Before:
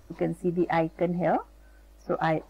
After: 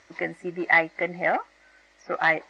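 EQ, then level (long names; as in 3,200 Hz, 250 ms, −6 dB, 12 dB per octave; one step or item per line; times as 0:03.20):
high-pass filter 1,200 Hz 6 dB per octave
low-pass filter 6,700 Hz 24 dB per octave
parametric band 2,000 Hz +13.5 dB 0.3 octaves
+6.5 dB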